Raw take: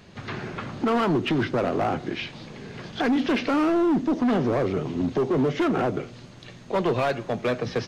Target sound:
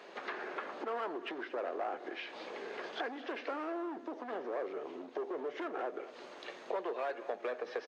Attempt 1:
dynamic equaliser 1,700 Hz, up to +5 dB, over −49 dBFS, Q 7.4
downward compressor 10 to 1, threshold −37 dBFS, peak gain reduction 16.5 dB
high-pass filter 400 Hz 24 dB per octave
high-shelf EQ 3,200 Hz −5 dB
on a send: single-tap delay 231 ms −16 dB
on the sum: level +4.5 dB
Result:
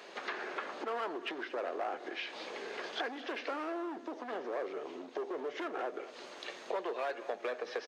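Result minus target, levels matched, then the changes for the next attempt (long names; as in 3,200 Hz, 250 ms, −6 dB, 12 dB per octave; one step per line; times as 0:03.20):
8,000 Hz band +6.5 dB
change: high-shelf EQ 3,200 Hz −14.5 dB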